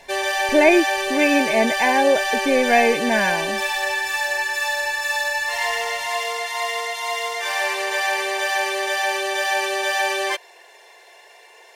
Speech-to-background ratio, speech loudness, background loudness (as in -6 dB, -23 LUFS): 3.0 dB, -19.0 LUFS, -22.0 LUFS